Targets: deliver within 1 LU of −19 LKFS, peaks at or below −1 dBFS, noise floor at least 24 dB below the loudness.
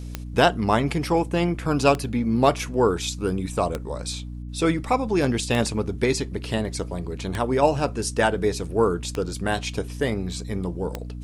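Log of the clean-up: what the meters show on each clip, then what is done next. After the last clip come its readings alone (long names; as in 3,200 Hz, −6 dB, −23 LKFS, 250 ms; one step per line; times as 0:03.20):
number of clicks 7; mains hum 60 Hz; hum harmonics up to 300 Hz; level of the hum −31 dBFS; integrated loudness −24.0 LKFS; sample peak −3.0 dBFS; target loudness −19.0 LKFS
→ click removal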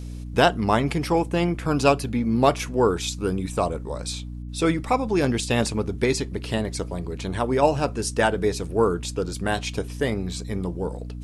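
number of clicks 0; mains hum 60 Hz; hum harmonics up to 300 Hz; level of the hum −31 dBFS
→ hum removal 60 Hz, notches 5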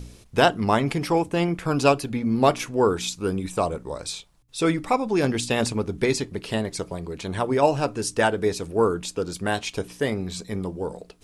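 mains hum none found; integrated loudness −24.5 LKFS; sample peak −3.5 dBFS; target loudness −19.0 LKFS
→ level +5.5 dB
brickwall limiter −1 dBFS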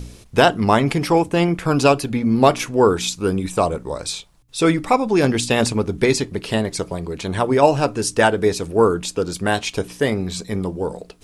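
integrated loudness −19.0 LKFS; sample peak −1.0 dBFS; background noise floor −47 dBFS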